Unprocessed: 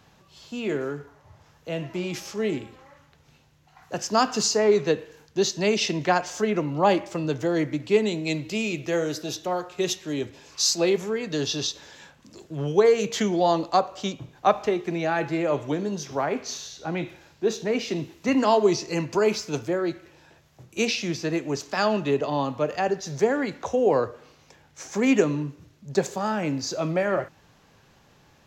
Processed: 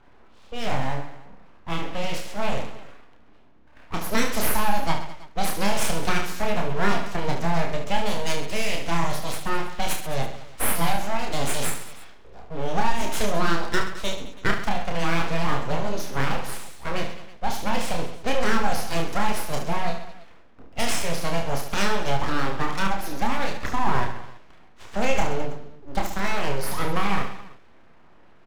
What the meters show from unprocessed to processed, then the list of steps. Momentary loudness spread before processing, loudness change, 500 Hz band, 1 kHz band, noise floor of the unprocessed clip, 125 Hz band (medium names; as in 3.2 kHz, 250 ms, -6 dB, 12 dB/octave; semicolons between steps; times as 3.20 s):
12 LU, -2.0 dB, -6.5 dB, +1.5 dB, -58 dBFS, +2.0 dB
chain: compression 2.5:1, threshold -23 dBFS, peak gain reduction 7.5 dB; level-controlled noise filter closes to 1.4 kHz, open at -23 dBFS; full-wave rectifier; on a send: reverse bouncing-ball echo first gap 30 ms, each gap 1.4×, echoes 5; on the sum: trim +3.5 dB